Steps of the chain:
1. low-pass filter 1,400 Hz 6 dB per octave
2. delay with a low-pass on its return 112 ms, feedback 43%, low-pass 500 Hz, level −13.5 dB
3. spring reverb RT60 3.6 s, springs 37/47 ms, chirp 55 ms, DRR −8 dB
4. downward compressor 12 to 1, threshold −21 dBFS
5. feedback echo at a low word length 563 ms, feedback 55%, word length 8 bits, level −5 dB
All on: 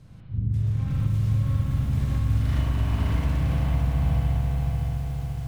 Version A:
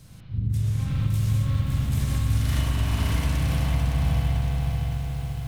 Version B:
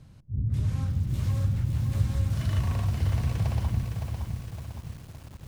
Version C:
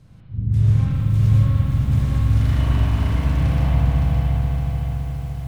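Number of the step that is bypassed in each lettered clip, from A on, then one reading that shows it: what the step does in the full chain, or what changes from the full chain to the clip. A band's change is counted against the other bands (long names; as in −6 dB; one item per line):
1, 4 kHz band +7.0 dB
3, 4 kHz band +2.5 dB
4, average gain reduction 4.0 dB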